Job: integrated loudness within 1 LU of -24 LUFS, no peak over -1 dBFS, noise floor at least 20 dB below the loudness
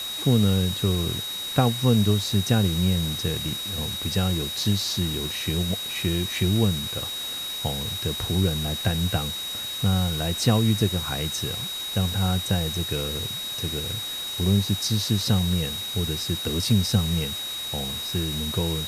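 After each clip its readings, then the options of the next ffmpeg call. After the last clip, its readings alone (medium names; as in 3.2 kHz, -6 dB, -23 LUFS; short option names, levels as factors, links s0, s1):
steady tone 3.8 kHz; tone level -30 dBFS; noise floor -32 dBFS; noise floor target -45 dBFS; loudness -24.5 LUFS; peak level -7.5 dBFS; loudness target -24.0 LUFS
-> -af "bandreject=f=3800:w=30"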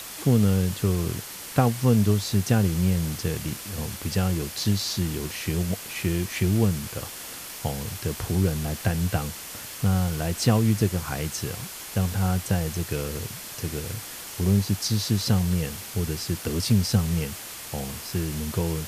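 steady tone not found; noise floor -39 dBFS; noise floor target -46 dBFS
-> -af "afftdn=nr=7:nf=-39"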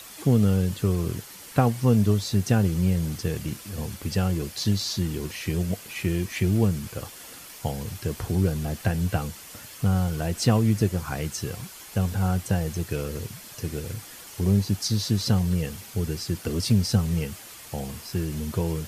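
noise floor -44 dBFS; noise floor target -46 dBFS
-> -af "afftdn=nr=6:nf=-44"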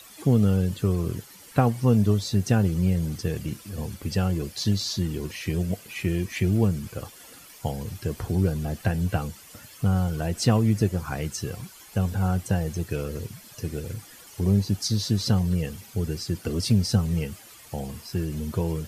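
noise floor -48 dBFS; loudness -26.0 LUFS; peak level -8.0 dBFS; loudness target -24.0 LUFS
-> -af "volume=1.26"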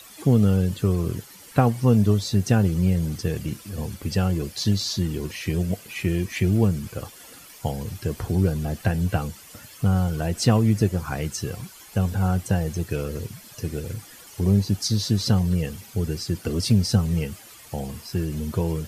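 loudness -24.0 LUFS; peak level -6.0 dBFS; noise floor -46 dBFS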